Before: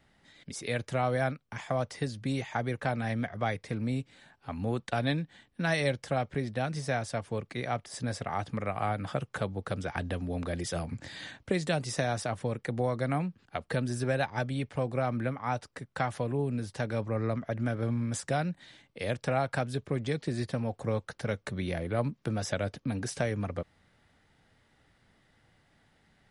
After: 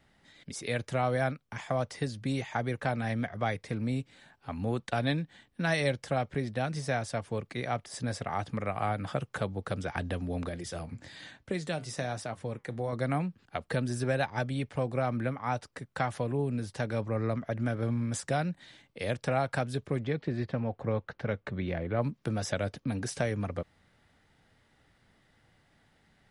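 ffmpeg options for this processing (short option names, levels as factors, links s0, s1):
-filter_complex "[0:a]asettb=1/sr,asplit=3[s0][s1][s2];[s0]atrim=end=10.494[s3];[s1]atrim=start=10.49:end=12.93,asetpts=PTS-STARTPTS,afade=t=in:d=0.004:c=qsin,afade=t=out:st=2.436:d=0.004:c=qsin,flanger=delay=4.8:depth=5.8:regen=-78:speed=1.1:shape=sinusoidal[s4];[s2]atrim=start=12.926[s5];[s3][s4]acrossfade=d=0.004:c1=hsin:c2=qsin[s6];[s6][s5]acrossfade=d=0.004:c1=qsin:c2=hsin,asettb=1/sr,asplit=3[s7][s8][s9];[s7]atrim=end=20.044[s10];[s8]atrim=start=20.04:end=22.02,asetpts=PTS-STARTPTS,afade=t=in:d=0.004:c=qsin,afade=t=out:st=1.976:d=0.004:c=qsin,lowpass=2800[s11];[s9]atrim=start=22.016[s12];[s10][s11]acrossfade=d=0.004:c1=hsin:c2=qsin[s13];[s13][s12]acrossfade=d=0.004:c1=qsin:c2=hsin"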